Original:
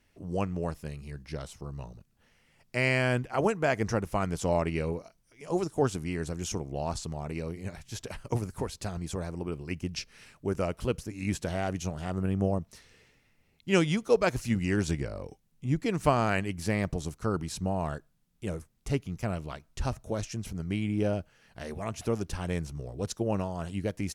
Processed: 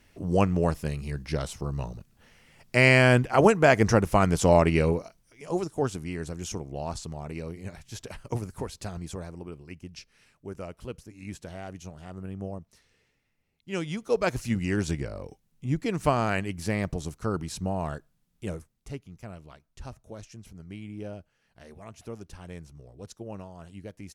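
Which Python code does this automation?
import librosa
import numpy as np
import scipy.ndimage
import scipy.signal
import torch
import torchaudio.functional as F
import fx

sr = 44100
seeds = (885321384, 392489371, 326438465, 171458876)

y = fx.gain(x, sr, db=fx.line((4.87, 8.0), (5.7, -1.0), (9.0, -1.0), (9.76, -8.5), (13.72, -8.5), (14.28, 0.5), (18.5, 0.5), (19.0, -10.0)))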